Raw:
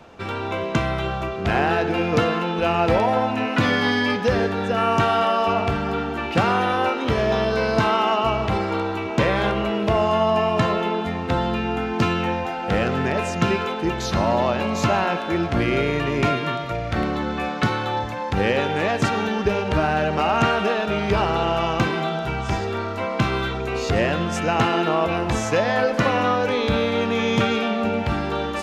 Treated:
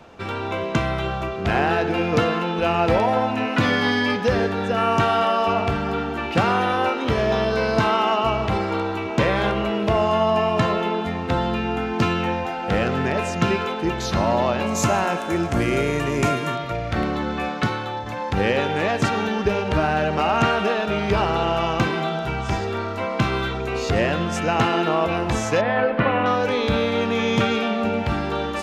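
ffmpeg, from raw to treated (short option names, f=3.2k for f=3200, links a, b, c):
-filter_complex "[0:a]asettb=1/sr,asplit=3[a][b][c];[a]atrim=end=14.664[d];[b]atrim=start=14.66:end=16.56,asetpts=PTS-STARTPTS,afade=t=in:d=0.004:c=qsin,afade=t=out:st=1.896:d=0.004:c=qsin,highshelf=f=5.6k:t=q:w=1.5:g=9.5[e];[c]atrim=start=16.556[f];[d][e]acrossfade=d=0.004:c1=hsin:c2=qsin[g];[g][f]acrossfade=d=0.004:c1=qsin:c2=hsin,asettb=1/sr,asplit=3[h][i][j];[h]atrim=end=25.614[k];[i]atrim=start=25.61:end=26.26,asetpts=PTS-STARTPTS,afade=t=in:d=0.004:c=qsin,afade=t=out:st=0.646:d=0.004:c=qsin,lowpass=f=3k:w=0.5412,lowpass=f=3k:w=1.3066[l];[j]atrim=start=26.256[m];[k][l]acrossfade=d=0.004:c1=hsin:c2=qsin[n];[n][m]acrossfade=d=0.004:c1=qsin:c2=hsin,asplit=2[o][p];[o]atrim=end=18.06,asetpts=PTS-STARTPTS,afade=t=out:st=17.47:d=0.59:silence=0.501187[q];[p]atrim=start=18.06,asetpts=PTS-STARTPTS,afade=t=in:d=0.004:c=hsin:silence=0.501187[r];[q][r]concat=n=2:v=0:a=1"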